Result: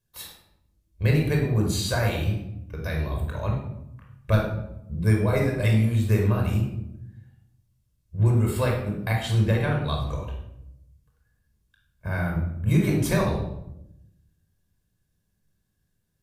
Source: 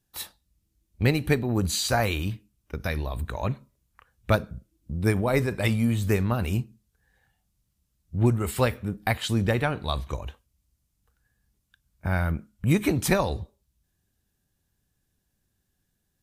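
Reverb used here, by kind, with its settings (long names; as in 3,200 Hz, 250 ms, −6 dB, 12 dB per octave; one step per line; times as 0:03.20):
rectangular room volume 2,200 cubic metres, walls furnished, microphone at 5.3 metres
level −6.5 dB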